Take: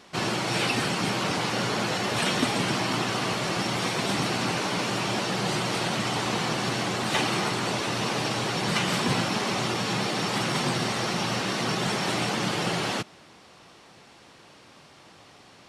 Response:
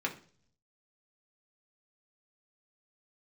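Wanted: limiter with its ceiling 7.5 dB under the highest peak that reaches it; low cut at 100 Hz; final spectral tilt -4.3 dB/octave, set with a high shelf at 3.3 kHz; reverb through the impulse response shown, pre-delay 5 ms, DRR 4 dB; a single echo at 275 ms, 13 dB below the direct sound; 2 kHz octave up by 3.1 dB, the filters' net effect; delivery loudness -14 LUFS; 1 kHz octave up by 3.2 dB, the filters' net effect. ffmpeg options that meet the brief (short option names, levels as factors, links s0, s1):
-filter_complex "[0:a]highpass=100,equalizer=f=1000:t=o:g=3.5,equalizer=f=2000:t=o:g=5.5,highshelf=f=3300:g=-8,alimiter=limit=0.126:level=0:latency=1,aecho=1:1:275:0.224,asplit=2[s0][s1];[1:a]atrim=start_sample=2205,adelay=5[s2];[s1][s2]afir=irnorm=-1:irlink=0,volume=0.335[s3];[s0][s3]amix=inputs=2:normalize=0,volume=3.76"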